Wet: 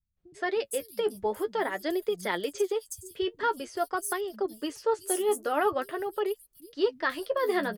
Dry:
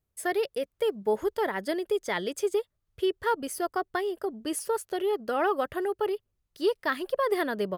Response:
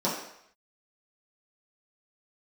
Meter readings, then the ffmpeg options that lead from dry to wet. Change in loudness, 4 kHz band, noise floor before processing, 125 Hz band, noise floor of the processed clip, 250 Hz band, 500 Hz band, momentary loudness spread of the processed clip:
−1.0 dB, 0.0 dB, −81 dBFS, can't be measured, −67 dBFS, −1.5 dB, −1.0 dB, 6 LU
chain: -filter_complex "[0:a]acrossover=split=190|5900[link_01][link_02][link_03];[link_02]adelay=170[link_04];[link_03]adelay=540[link_05];[link_01][link_04][link_05]amix=inputs=3:normalize=0,flanger=delay=4:depth=8:regen=35:speed=0.47:shape=triangular,adynamicequalizer=threshold=0.002:dfrequency=4600:dqfactor=0.7:tfrequency=4600:tqfactor=0.7:attack=5:release=100:ratio=0.375:range=2.5:mode=boostabove:tftype=highshelf,volume=3.5dB"

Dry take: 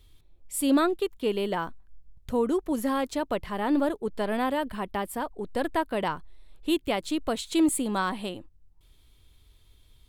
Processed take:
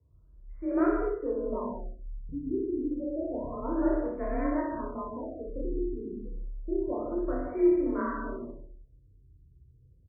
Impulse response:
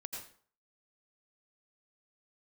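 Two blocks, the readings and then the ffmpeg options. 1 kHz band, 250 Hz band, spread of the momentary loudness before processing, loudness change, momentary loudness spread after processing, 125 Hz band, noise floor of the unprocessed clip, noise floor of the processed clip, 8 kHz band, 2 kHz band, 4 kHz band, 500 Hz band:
−7.5 dB, −2.5 dB, 9 LU, −3.0 dB, 14 LU, −1.5 dB, −59 dBFS, −59 dBFS, below −40 dB, −10.0 dB, below −40 dB, −1.5 dB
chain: -filter_complex "[0:a]highshelf=frequency=2400:gain=-11,flanger=delay=18.5:depth=6.6:speed=1.1,afreqshift=35,asuperstop=centerf=800:order=12:qfactor=5.5,aecho=1:1:62|124|186|248:0.668|0.214|0.0684|0.0219,asplit=2[link_01][link_02];[1:a]atrim=start_sample=2205,lowshelf=frequency=420:gain=5.5,adelay=31[link_03];[link_02][link_03]afir=irnorm=-1:irlink=0,volume=0dB[link_04];[link_01][link_04]amix=inputs=2:normalize=0,afftfilt=real='re*lt(b*sr/1024,440*pow(2500/440,0.5+0.5*sin(2*PI*0.29*pts/sr)))':imag='im*lt(b*sr/1024,440*pow(2500/440,0.5+0.5*sin(2*PI*0.29*pts/sr)))':win_size=1024:overlap=0.75,volume=-4.5dB"

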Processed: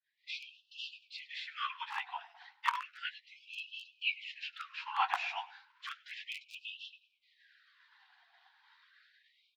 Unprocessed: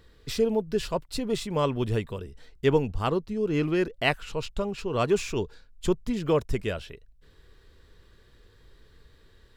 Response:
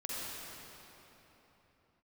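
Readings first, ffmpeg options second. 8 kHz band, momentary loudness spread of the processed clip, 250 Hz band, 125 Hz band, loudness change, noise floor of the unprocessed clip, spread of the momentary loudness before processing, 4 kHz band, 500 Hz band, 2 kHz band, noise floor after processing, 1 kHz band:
−19.0 dB, 13 LU, below −40 dB, below −40 dB, −12.0 dB, −58 dBFS, 9 LU, −4.0 dB, −37.0 dB, −4.0 dB, −76 dBFS, −4.0 dB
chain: -filter_complex "[0:a]dynaudnorm=framelen=120:gausssize=3:maxgain=8dB,agate=range=-33dB:threshold=-44dB:ratio=3:detection=peak,aemphasis=mode=reproduction:type=riaa,acrossover=split=3300[link_01][link_02];[link_02]acompressor=threshold=-45dB:ratio=4:attack=1:release=60[link_03];[link_01][link_03]amix=inputs=2:normalize=0,flanger=delay=6.4:depth=3.9:regen=19:speed=0.32:shape=sinusoidal,afftfilt=real='hypot(re,im)*cos(2*PI*random(0))':imag='hypot(re,im)*sin(2*PI*random(1))':win_size=512:overlap=0.75,lowpass=frequency=5000:width=0.5412,lowpass=frequency=5000:width=1.3066,equalizer=frequency=1200:width=6.5:gain=-10.5,asplit=2[link_04][link_05];[link_05]adelay=14,volume=-8dB[link_06];[link_04][link_06]amix=inputs=2:normalize=0,asplit=4[link_07][link_08][link_09][link_10];[link_08]adelay=102,afreqshift=-53,volume=-20dB[link_11];[link_09]adelay=204,afreqshift=-106,volume=-27.3dB[link_12];[link_10]adelay=306,afreqshift=-159,volume=-34.7dB[link_13];[link_07][link_11][link_12][link_13]amix=inputs=4:normalize=0,asoftclip=type=hard:threshold=-8.5dB,afftfilt=real='re*gte(b*sr/1024,680*pow(2600/680,0.5+0.5*sin(2*PI*0.33*pts/sr)))':imag='im*gte(b*sr/1024,680*pow(2600/680,0.5+0.5*sin(2*PI*0.33*pts/sr)))':win_size=1024:overlap=0.75,volume=6dB"

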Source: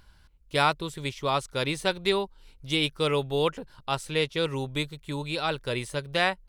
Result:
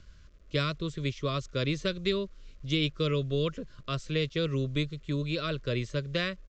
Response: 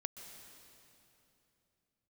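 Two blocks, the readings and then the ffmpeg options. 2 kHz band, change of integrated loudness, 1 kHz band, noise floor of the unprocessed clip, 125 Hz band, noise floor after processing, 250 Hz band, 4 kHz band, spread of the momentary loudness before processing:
−6.5 dB, −3.0 dB, −12.0 dB, −57 dBFS, +3.0 dB, −54 dBFS, +0.5 dB, −4.5 dB, 8 LU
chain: -filter_complex "[0:a]lowshelf=frequency=410:gain=8,acrossover=split=210|3000[link_01][link_02][link_03];[link_02]acompressor=threshold=-25dB:ratio=4[link_04];[link_01][link_04][link_03]amix=inputs=3:normalize=0,acrusher=bits=9:mix=0:aa=0.000001,asuperstop=centerf=830:order=8:qfactor=2.3,aresample=16000,aresample=44100,volume=-3.5dB"

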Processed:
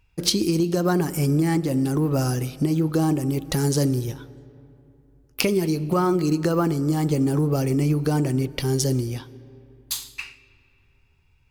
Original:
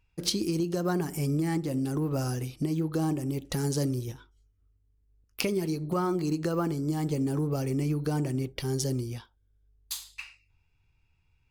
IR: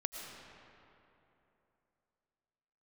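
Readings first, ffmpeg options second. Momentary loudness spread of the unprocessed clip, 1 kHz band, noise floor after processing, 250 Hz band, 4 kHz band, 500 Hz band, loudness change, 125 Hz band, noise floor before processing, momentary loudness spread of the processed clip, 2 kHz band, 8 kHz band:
9 LU, +7.5 dB, −61 dBFS, +7.5 dB, +7.5 dB, +7.5 dB, +7.0 dB, +7.5 dB, −70 dBFS, 8 LU, +7.5 dB, +7.5 dB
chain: -filter_complex "[0:a]asplit=2[link_01][link_02];[link_02]equalizer=frequency=13000:width_type=o:width=0.35:gain=9[link_03];[1:a]atrim=start_sample=2205[link_04];[link_03][link_04]afir=irnorm=-1:irlink=0,volume=-15dB[link_05];[link_01][link_05]amix=inputs=2:normalize=0,volume=6dB"

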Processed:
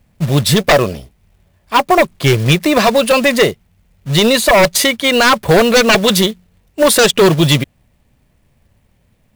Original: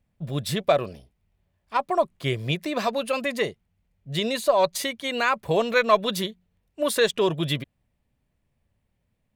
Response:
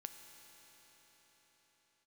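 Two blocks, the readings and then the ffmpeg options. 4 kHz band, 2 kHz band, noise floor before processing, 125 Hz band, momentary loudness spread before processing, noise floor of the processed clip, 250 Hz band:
+15.0 dB, +14.0 dB, −74 dBFS, +15.5 dB, 9 LU, −57 dBFS, +15.5 dB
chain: -af "aeval=exprs='0.562*sin(PI/2*4.47*val(0)/0.562)':channel_layout=same,acrusher=bits=4:mode=log:mix=0:aa=0.000001"

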